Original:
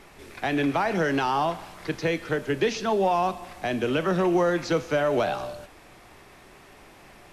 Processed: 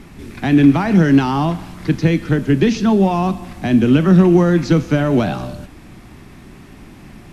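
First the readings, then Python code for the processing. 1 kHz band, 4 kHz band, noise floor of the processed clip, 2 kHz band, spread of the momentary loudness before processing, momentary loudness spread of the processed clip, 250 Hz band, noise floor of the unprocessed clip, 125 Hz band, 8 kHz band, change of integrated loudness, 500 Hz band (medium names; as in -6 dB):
+3.0 dB, +4.5 dB, -40 dBFS, +4.0 dB, 10 LU, 11 LU, +15.5 dB, -51 dBFS, +18.0 dB, no reading, +10.5 dB, +5.0 dB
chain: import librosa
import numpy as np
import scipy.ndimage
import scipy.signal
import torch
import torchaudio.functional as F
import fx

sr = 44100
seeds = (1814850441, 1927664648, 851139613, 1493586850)

y = fx.cheby_harmonics(x, sr, harmonics=(6,), levels_db=(-35,), full_scale_db=-11.0)
y = fx.low_shelf_res(y, sr, hz=350.0, db=11.5, q=1.5)
y = y * 10.0 ** (4.5 / 20.0)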